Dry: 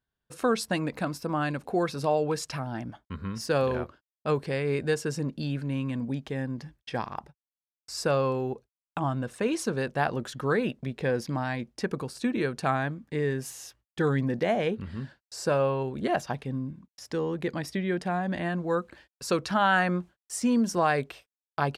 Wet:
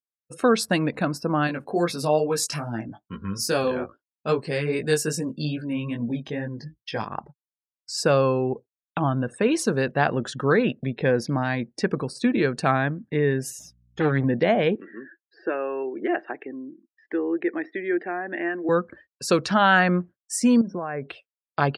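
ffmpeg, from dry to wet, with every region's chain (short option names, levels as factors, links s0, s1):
-filter_complex "[0:a]asettb=1/sr,asplit=3[s0][s1][s2];[s0]atrim=end=1.474[s3];[s1]atrim=start=1.47:end=7.08,asetpts=PTS-STARTPTS,afade=t=in:d=0.004:c=qsin,afade=t=out:st=5.606:d=0.004:c=qsin,aemphasis=mode=production:type=50kf,flanger=delay=17:depth=3.3:speed=2.4[s4];[s2]atrim=start=7.076[s5];[s3][s4]acrossfade=d=0.004:c1=hsin:c2=qsin[s6];[s6][s5]acrossfade=d=0.004:c1=qsin:c2=hsin,asettb=1/sr,asplit=3[s7][s8][s9];[s7]atrim=end=13.594[s10];[s8]atrim=start=13.59:end=14.24,asetpts=PTS-STARTPTS,afade=t=in:d=0.004:c=qsin,afade=t=out:st=0.646:d=0.004:c=qsin,aeval=exprs='max(val(0),0)':c=same,aecho=1:1:6.6:0.3,atrim=end_sample=28665,aeval=exprs='val(0)+0.00126*(sin(2*PI*60*n/s)+sin(2*PI*2*60*n/s)/2+sin(2*PI*3*60*n/s)/3+sin(2*PI*4*60*n/s)/4+sin(2*PI*5*60*n/s)/5)':c=same[s11];[s9]atrim=start=14.236[s12];[s10][s11]acrossfade=d=0.004:c1=hsin:c2=qsin[s13];[s13][s12]acrossfade=d=0.004:c1=qsin:c2=hsin,asettb=1/sr,asplit=3[s14][s15][s16];[s14]atrim=end=14.754[s17];[s15]atrim=start=14.75:end=18.69,asetpts=PTS-STARTPTS,afade=t=in:d=0.004:c=qsin,afade=t=out:st=3.936:d=0.004:c=qsin,acompressor=threshold=0.02:ratio=1.5:attack=3.2:release=140:knee=1:detection=peak,highpass=f=320:w=0.5412,highpass=f=320:w=1.3066,equalizer=f=330:t=q:w=4:g=9,equalizer=f=550:t=q:w=4:g=-6,equalizer=f=1000:t=q:w=4:g=-5,equalizer=f=1800:t=q:w=4:g=5,equalizer=f=3000:t=q:w=4:g=-3,lowpass=f=3200:w=0.5412,lowpass=f=3200:w=1.3066[s18];[s16]atrim=start=18.686[s19];[s17][s18]acrossfade=d=0.004:c1=hsin:c2=qsin[s20];[s20][s19]acrossfade=d=0.004:c1=qsin:c2=hsin,asettb=1/sr,asplit=3[s21][s22][s23];[s21]atrim=end=20.614[s24];[s22]atrim=start=20.61:end=21.07,asetpts=PTS-STARTPTS,afade=t=in:d=0.004:c=qsin,afade=t=out:st=0.456:d=0.004:c=qsin,lowpass=1900,acompressor=threshold=0.0224:ratio=4:attack=3.2:release=140:knee=1:detection=peak[s25];[s23]atrim=start=21.066[s26];[s24][s25]acrossfade=d=0.004:c1=hsin:c2=qsin[s27];[s27][s26]acrossfade=d=0.004:c1=qsin:c2=hsin,afftdn=nr=29:nf=-49,highpass=99,equalizer=f=910:w=1.8:g=-3,volume=2.11"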